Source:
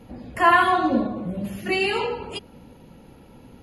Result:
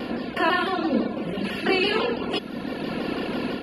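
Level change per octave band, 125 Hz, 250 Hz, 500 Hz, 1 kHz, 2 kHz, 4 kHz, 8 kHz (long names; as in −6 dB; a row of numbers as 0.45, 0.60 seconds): 0.0 dB, +2.0 dB, +1.0 dB, −6.5 dB, −2.5 dB, +3.0 dB, can't be measured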